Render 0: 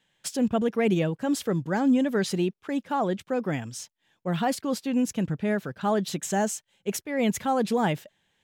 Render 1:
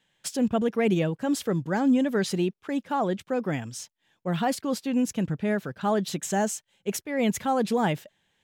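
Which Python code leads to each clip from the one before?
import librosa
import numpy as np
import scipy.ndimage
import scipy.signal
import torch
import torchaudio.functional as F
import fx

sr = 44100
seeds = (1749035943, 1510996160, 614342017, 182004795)

y = x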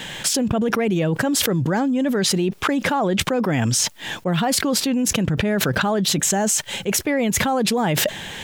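y = fx.env_flatten(x, sr, amount_pct=100)
y = y * 10.0 ** (-1.5 / 20.0)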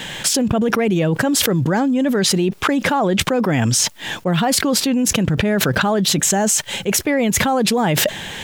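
y = fx.dmg_crackle(x, sr, seeds[0], per_s=98.0, level_db=-43.0)
y = y * 10.0 ** (3.0 / 20.0)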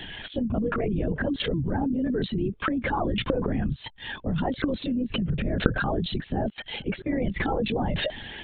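y = fx.spec_expand(x, sr, power=1.6)
y = fx.lpc_vocoder(y, sr, seeds[1], excitation='whisper', order=16)
y = y * 10.0 ** (-9.0 / 20.0)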